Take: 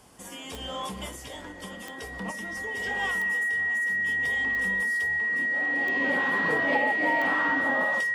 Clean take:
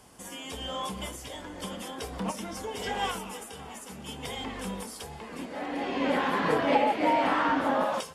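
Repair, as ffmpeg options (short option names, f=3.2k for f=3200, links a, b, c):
-af "adeclick=t=4,bandreject=f=1.9k:w=30,asetnsamples=n=441:p=0,asendcmd='1.52 volume volume 3.5dB',volume=0dB"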